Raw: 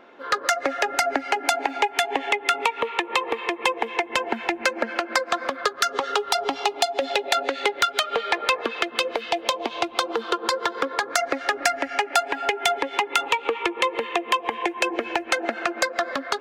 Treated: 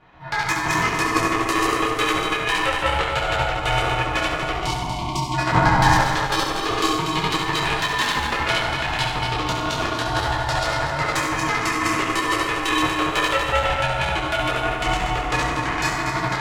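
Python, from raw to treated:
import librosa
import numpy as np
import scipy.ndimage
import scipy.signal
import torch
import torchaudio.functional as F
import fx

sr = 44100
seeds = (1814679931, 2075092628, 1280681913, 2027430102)

y = fx.reverse_delay_fb(x, sr, ms=120, feedback_pct=52, wet_db=-0.5)
y = fx.spec_erase(y, sr, start_s=4.5, length_s=0.85, low_hz=780.0, high_hz=2400.0)
y = fx.peak_eq(y, sr, hz=430.0, db=13.5, octaves=2.3, at=(5.52, 5.92))
y = fx.rev_fdn(y, sr, rt60_s=1.6, lf_ratio=1.0, hf_ratio=0.6, size_ms=56.0, drr_db=-8.5)
y = y * np.sin(2.0 * np.pi * 390.0 * np.arange(len(y)) / sr)
y = F.gain(torch.from_numpy(y), -6.5).numpy()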